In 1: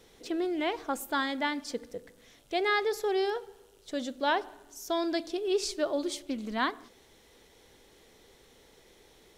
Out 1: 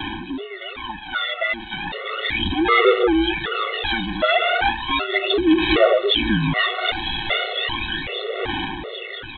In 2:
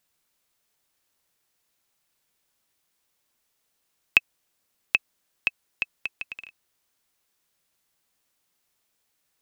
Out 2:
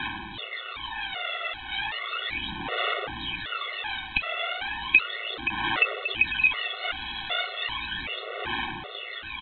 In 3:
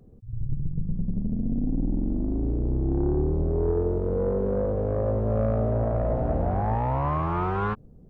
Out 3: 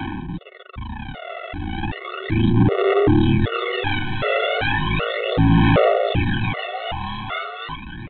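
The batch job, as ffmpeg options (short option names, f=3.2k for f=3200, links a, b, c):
-filter_complex "[0:a]aeval=exprs='val(0)+0.5*0.0891*sgn(val(0))':c=same,equalizer=f=88:w=5.6:g=-15,aeval=exprs='val(0)*sin(2*PI*55*n/s)':c=same,aeval=exprs='val(0)+0.00251*(sin(2*PI*60*n/s)+sin(2*PI*2*60*n/s)/2+sin(2*PI*3*60*n/s)/3+sin(2*PI*4*60*n/s)/4+sin(2*PI*5*60*n/s)/5)':c=same,lowshelf=f=280:g=-11.5,flanger=delay=2.5:depth=4.2:regen=-51:speed=1.3:shape=sinusoidal,acrossover=split=85|260|1400[a][b][c][d];[a]acompressor=threshold=-55dB:ratio=4[e];[c]acompressor=threshold=-41dB:ratio=4[f];[e][b][f][d]amix=inputs=4:normalize=0,aphaser=in_gain=1:out_gain=1:delay=1.5:decay=0.72:speed=0.35:type=sinusoidal,asplit=2[g][h];[h]adelay=125,lowpass=f=1.4k:p=1,volume=-20.5dB,asplit=2[i][j];[j]adelay=125,lowpass=f=1.4k:p=1,volume=0.15[k];[g][i][k]amix=inputs=3:normalize=0,dynaudnorm=f=190:g=21:m=14dB,aresample=8000,asoftclip=type=tanh:threshold=-10.5dB,aresample=44100,afftfilt=real='re*gt(sin(2*PI*1.3*pts/sr)*(1-2*mod(floor(b*sr/1024/370),2)),0)':imag='im*gt(sin(2*PI*1.3*pts/sr)*(1-2*mod(floor(b*sr/1024/370),2)),0)':win_size=1024:overlap=0.75,volume=6.5dB"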